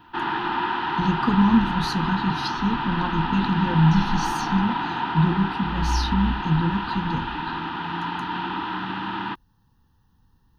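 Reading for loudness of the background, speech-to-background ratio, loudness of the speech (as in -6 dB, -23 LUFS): -27.0 LUFS, 3.0 dB, -24.0 LUFS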